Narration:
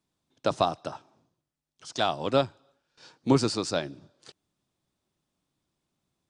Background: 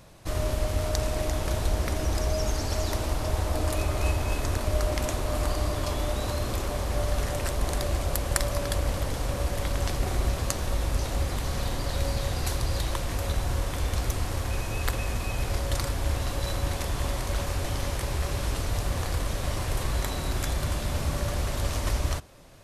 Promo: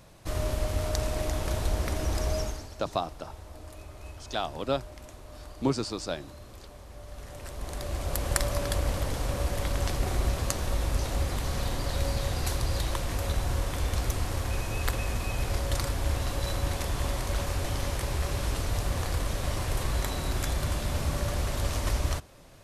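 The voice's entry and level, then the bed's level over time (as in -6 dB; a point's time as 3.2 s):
2.35 s, -5.0 dB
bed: 2.39 s -2 dB
2.76 s -18 dB
7.01 s -18 dB
8.26 s -1 dB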